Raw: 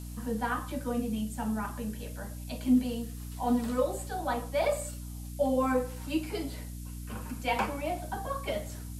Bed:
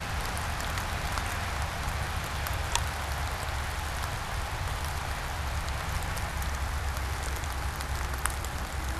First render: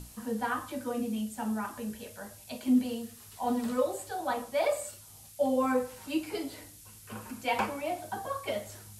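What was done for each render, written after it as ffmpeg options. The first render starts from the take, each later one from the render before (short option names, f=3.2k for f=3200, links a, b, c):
-af "bandreject=f=60:t=h:w=6,bandreject=f=120:t=h:w=6,bandreject=f=180:t=h:w=6,bandreject=f=240:t=h:w=6,bandreject=f=300:t=h:w=6"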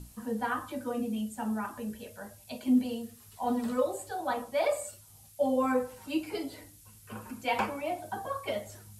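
-af "afftdn=nr=6:nf=-52"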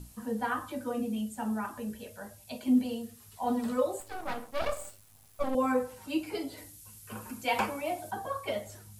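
-filter_complex "[0:a]asettb=1/sr,asplit=3[a][b][c];[a]atrim=end=4.004[d];[b]atrim=start=4:end=5.55,asetpts=PTS-STARTPTS,afade=t=in:d=0.004:c=qsin,afade=t=out:st=1.546:d=0.004:c=qsin,aeval=exprs='max(val(0),0)':c=same[e];[c]atrim=start=5.546[f];[d][e]acrossfade=d=0.004:c1=hsin:c2=qsin[g];[g][f]acrossfade=d=0.004:c1=qsin:c2=hsin,asettb=1/sr,asplit=3[h][i][j];[h]atrim=end=6.574[k];[i]atrim=start=6.57:end=8.11,asetpts=PTS-STARTPTS,afade=t=in:d=0.004:c=qsin,afade=t=out:st=1.536:d=0.004:c=qsin,highshelf=f=4.5k:g=6[l];[j]atrim=start=8.106[m];[k][l]acrossfade=d=0.004:c1=hsin:c2=qsin[n];[n][m]acrossfade=d=0.004:c1=qsin:c2=hsin"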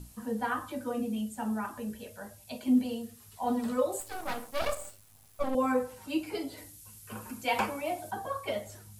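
-filter_complex "[0:a]asettb=1/sr,asplit=3[a][b][c];[a]atrim=end=3.924[d];[b]atrim=start=3.92:end=4.75,asetpts=PTS-STARTPTS,afade=t=in:d=0.004:c=qsin,afade=t=out:st=0.826:d=0.004:c=qsin,highshelf=f=3.9k:g=7.5[e];[c]atrim=start=4.746[f];[d][e]acrossfade=d=0.004:c1=hsin:c2=qsin[g];[g][f]acrossfade=d=0.004:c1=qsin:c2=hsin"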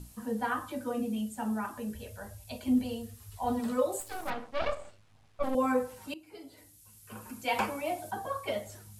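-filter_complex "[0:a]asettb=1/sr,asplit=3[a][b][c];[a]atrim=end=1.954[d];[b]atrim=start=1.95:end=3.6,asetpts=PTS-STARTPTS,afade=t=in:d=0.004:c=qsin,afade=t=out:st=1.646:d=0.004:c=qsin,lowshelf=f=120:t=q:w=1.5:g=11[e];[c]atrim=start=3.596[f];[d][e]acrossfade=d=0.004:c1=hsin:c2=qsin[g];[g][f]acrossfade=d=0.004:c1=qsin:c2=hsin,asplit=3[h][i][j];[h]afade=t=out:st=4.29:d=0.02[k];[i]lowpass=3.4k,afade=t=in:st=4.29:d=0.02,afade=t=out:st=5.42:d=0.02[l];[j]afade=t=in:st=5.42:d=0.02[m];[k][l][m]amix=inputs=3:normalize=0,asplit=2[n][o];[n]atrim=end=6.14,asetpts=PTS-STARTPTS,afade=t=out:st=6.136:d=0.004:c=hsin:silence=0.0944061[p];[o]atrim=start=6.14,asetpts=PTS-STARTPTS,afade=t=in:d=1.59:silence=0.0944061[q];[p][q]concat=n=2:v=0:a=1"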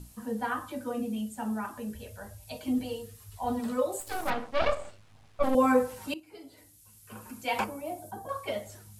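-filter_complex "[0:a]asettb=1/sr,asplit=3[a][b][c];[a]atrim=end=2.424[d];[b]atrim=start=2.42:end=3.24,asetpts=PTS-STARTPTS,afade=t=in:d=0.004:c=qsin,afade=t=out:st=0.816:d=0.004:c=qsin,aecho=1:1:6.5:0.63,atrim=end_sample=36162[e];[c]atrim=start=3.236[f];[d][e]acrossfade=d=0.004:c1=hsin:c2=qsin[g];[g][f]acrossfade=d=0.004:c1=qsin:c2=hsin,asettb=1/sr,asplit=3[h][i][j];[h]atrim=end=4.074[k];[i]atrim=start=4.07:end=6.2,asetpts=PTS-STARTPTS,afade=t=in:d=0.004:c=qsin,afade=t=out:st=2.126:d=0.004:c=qsin,acontrast=29[l];[j]atrim=start=6.196[m];[k][l]acrossfade=d=0.004:c1=hsin:c2=qsin[n];[n][m]acrossfade=d=0.004:c1=qsin:c2=hsin,asettb=1/sr,asplit=3[o][p][q];[o]atrim=end=7.644[r];[p]atrim=start=7.64:end=8.29,asetpts=PTS-STARTPTS,afade=t=in:d=0.004:c=qsin,afade=t=out:st=0.646:d=0.004:c=qsin,equalizer=f=2.4k:t=o:w=2.6:g=-12[s];[q]atrim=start=8.286[t];[r][s]acrossfade=d=0.004:c1=hsin:c2=qsin[u];[u][t]acrossfade=d=0.004:c1=qsin:c2=hsin"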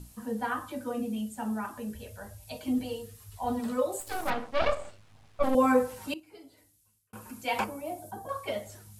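-filter_complex "[0:a]asplit=2[a][b];[a]atrim=end=7.13,asetpts=PTS-STARTPTS,afade=t=out:st=6.11:d=1.02[c];[b]atrim=start=7.13,asetpts=PTS-STARTPTS,afade=t=in:d=0.004:c=hsin[d];[c][d]concat=n=2:v=0:a=1"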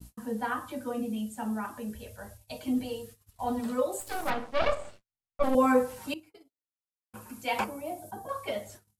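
-af "bandreject=f=50:t=h:w=6,bandreject=f=100:t=h:w=6,agate=range=-45dB:threshold=-48dB:ratio=16:detection=peak"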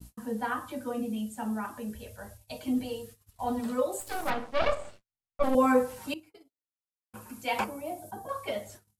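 -af anull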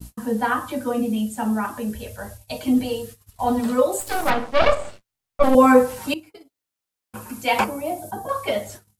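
-af "volume=10dB"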